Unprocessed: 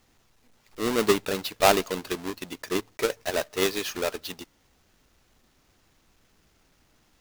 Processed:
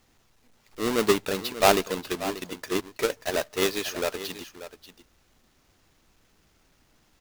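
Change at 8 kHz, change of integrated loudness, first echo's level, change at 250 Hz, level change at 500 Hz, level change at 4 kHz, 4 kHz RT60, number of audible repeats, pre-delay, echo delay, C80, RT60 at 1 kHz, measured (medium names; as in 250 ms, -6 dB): 0.0 dB, 0.0 dB, -13.5 dB, +0.5 dB, 0.0 dB, 0.0 dB, no reverb, 1, no reverb, 586 ms, no reverb, no reverb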